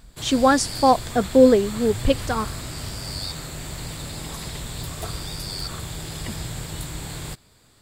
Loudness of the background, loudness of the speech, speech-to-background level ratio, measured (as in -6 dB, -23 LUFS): -32.0 LUFS, -19.5 LUFS, 12.5 dB